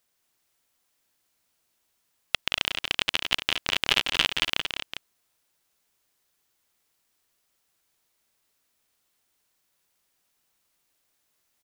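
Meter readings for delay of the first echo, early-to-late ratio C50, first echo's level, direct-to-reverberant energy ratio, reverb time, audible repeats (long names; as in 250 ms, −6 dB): 174 ms, no reverb audible, −8.0 dB, no reverb audible, no reverb audible, 3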